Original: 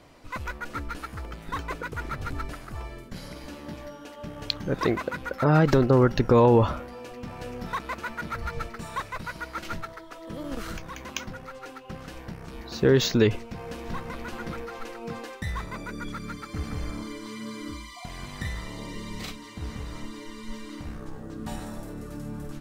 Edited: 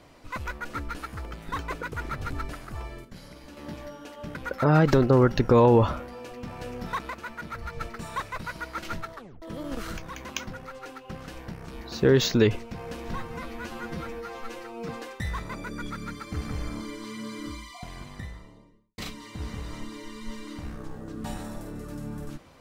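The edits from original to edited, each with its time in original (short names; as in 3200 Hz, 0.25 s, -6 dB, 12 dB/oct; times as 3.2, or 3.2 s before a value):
3.05–3.57 gain -6 dB
4.35–5.15 cut
7.9–8.61 gain -4 dB
9.95 tape stop 0.27 s
13.95–15.11 stretch 1.5×
17.78–19.2 studio fade out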